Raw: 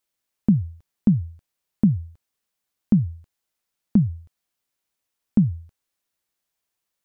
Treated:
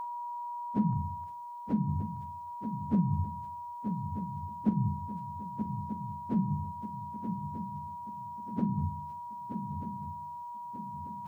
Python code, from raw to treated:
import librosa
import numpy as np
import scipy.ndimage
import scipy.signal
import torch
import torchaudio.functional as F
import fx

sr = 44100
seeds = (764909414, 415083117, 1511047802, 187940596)

p1 = scipy.signal.sosfilt(scipy.signal.butter(2, 76.0, 'highpass', fs=sr, output='sos'), x)
p2 = fx.low_shelf(p1, sr, hz=320.0, db=-8.0)
p3 = fx.hum_notches(p2, sr, base_hz=50, count=7)
p4 = fx.over_compress(p3, sr, threshold_db=-34.0, ratio=-1.0)
p5 = p3 + (p4 * librosa.db_to_amplitude(0.5))
p6 = p5 + 10.0 ** (-32.0 / 20.0) * np.sin(2.0 * np.pi * 960.0 * np.arange(len(p5)) / sr)
p7 = fx.stretch_vocoder_free(p6, sr, factor=1.6)
p8 = fx.doubler(p7, sr, ms=42.0, db=-12.5)
p9 = fx.echo_swing(p8, sr, ms=1238, ratio=3, feedback_pct=43, wet_db=-8)
y = p9 * librosa.db_to_amplitude(-2.5)